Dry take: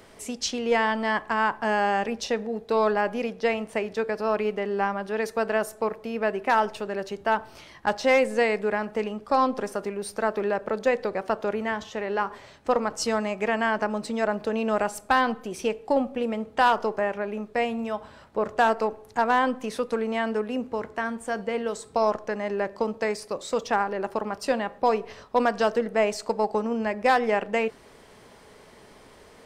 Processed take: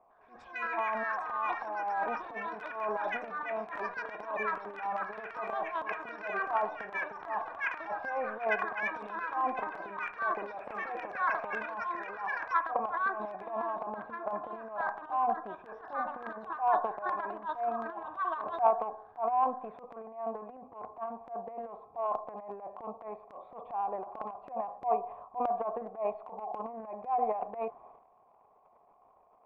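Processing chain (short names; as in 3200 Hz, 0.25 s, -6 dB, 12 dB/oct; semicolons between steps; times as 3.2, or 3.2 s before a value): vocal tract filter a; transient shaper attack -12 dB, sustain +12 dB; echoes that change speed 0.105 s, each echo +7 st, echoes 2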